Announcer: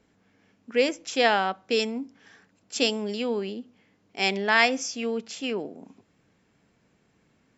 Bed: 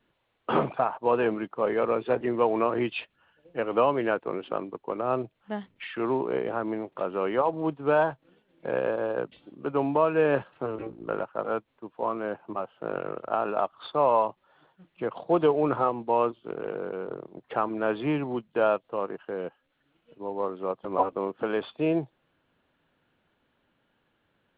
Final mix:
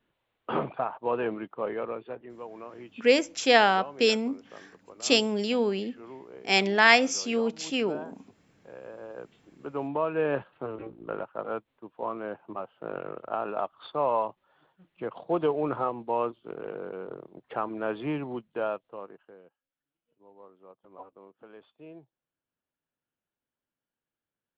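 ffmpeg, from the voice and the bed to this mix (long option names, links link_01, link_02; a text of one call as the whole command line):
ffmpeg -i stem1.wav -i stem2.wav -filter_complex "[0:a]adelay=2300,volume=2dB[link_01];[1:a]volume=9.5dB,afade=type=out:start_time=1.57:duration=0.68:silence=0.211349,afade=type=in:start_time=8.8:duration=1.47:silence=0.199526,afade=type=out:start_time=18.27:duration=1.16:silence=0.125893[link_02];[link_01][link_02]amix=inputs=2:normalize=0" out.wav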